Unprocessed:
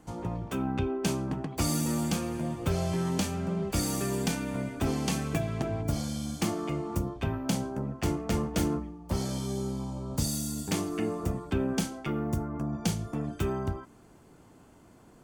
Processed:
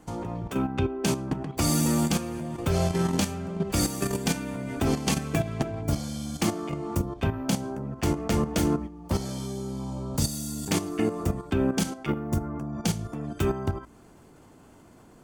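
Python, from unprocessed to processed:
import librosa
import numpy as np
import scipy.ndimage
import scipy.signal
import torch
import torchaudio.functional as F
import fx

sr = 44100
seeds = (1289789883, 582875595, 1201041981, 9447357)

y = fx.hum_notches(x, sr, base_hz=60, count=3)
y = fx.level_steps(y, sr, step_db=10)
y = y * librosa.db_to_amplitude(7.0)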